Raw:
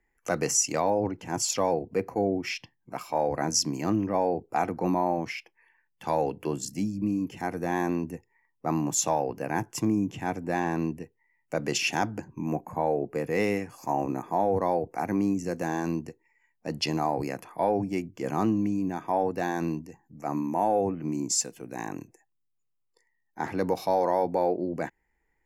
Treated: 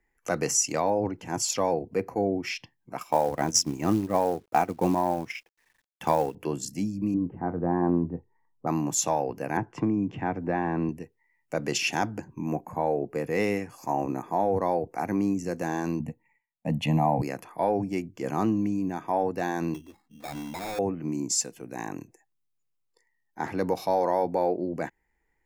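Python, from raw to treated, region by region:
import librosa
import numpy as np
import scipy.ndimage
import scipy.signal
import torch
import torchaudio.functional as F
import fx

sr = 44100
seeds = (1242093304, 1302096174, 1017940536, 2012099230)

y = fx.chain(x, sr, fx.notch(hz=4400.0, q=5.3),
    fx.transient(attack_db=6, sustain_db=-8),
    fx.quant_companded(bits=6), at=(2.99, 6.35))
y = fx.chain(y, sr, fx.lowpass(hz=1300.0, slope=24),
    fx.low_shelf(hz=260.0, db=5.5),
    fx.doubler(ms=23.0, db=-11.5), at=(7.14, 8.67))
y = fx.chain(y, sr, fx.lowpass(hz=2100.0, slope=12),
    fx.band_squash(depth_pct=70), at=(9.57, 10.89))
y = fx.chain(y, sr, fx.gate_hold(open_db=-58.0, close_db=-65.0, hold_ms=71.0, range_db=-21, attack_ms=1.4, release_ms=100.0),
    fx.peak_eq(hz=210.0, db=13.5, octaves=2.6),
    fx.fixed_phaser(hz=1400.0, stages=6), at=(16.0, 17.22))
y = fx.chain(y, sr, fx.env_flanger(rest_ms=5.0, full_db=-20.0),
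    fx.sample_hold(seeds[0], rate_hz=3000.0, jitter_pct=0),
    fx.overload_stage(gain_db=32.0), at=(19.74, 20.79))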